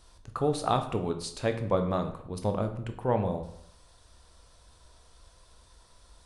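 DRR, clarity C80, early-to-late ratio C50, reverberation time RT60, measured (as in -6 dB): 7.0 dB, 13.5 dB, 10.5 dB, 0.70 s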